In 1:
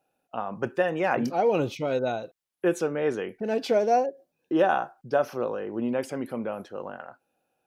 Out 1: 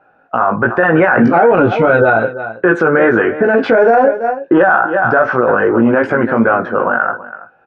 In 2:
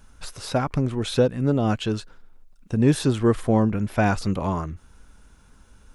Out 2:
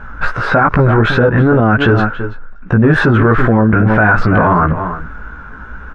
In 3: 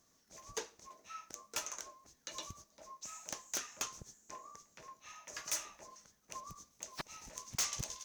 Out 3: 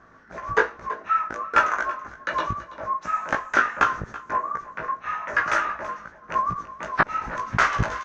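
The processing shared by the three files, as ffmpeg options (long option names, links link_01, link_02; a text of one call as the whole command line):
ffmpeg -i in.wav -filter_complex "[0:a]aeval=exprs='0.501*(cos(1*acos(clip(val(0)/0.501,-1,1)))-cos(1*PI/2))+0.0141*(cos(7*acos(clip(val(0)/0.501,-1,1)))-cos(7*PI/2))':channel_layout=same,lowpass=frequency=1500:width_type=q:width=4.2,flanger=delay=16.5:depth=2.2:speed=2.6,asplit=2[link_01][link_02];[link_02]aecho=0:1:330:0.133[link_03];[link_01][link_03]amix=inputs=2:normalize=0,alimiter=level_in=26dB:limit=-1dB:release=50:level=0:latency=1,volume=-1dB" out.wav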